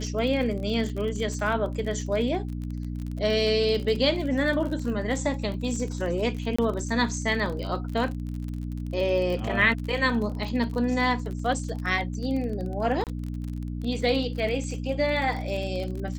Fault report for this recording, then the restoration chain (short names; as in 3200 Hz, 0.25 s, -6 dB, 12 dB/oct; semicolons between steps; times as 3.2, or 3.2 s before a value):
crackle 36/s -32 dBFS
hum 60 Hz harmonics 5 -32 dBFS
6.56–6.58 gap 25 ms
13.04–13.07 gap 28 ms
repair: de-click; de-hum 60 Hz, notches 5; interpolate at 6.56, 25 ms; interpolate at 13.04, 28 ms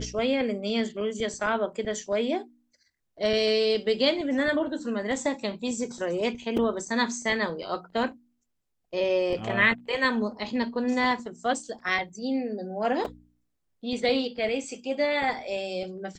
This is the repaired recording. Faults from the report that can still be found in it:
none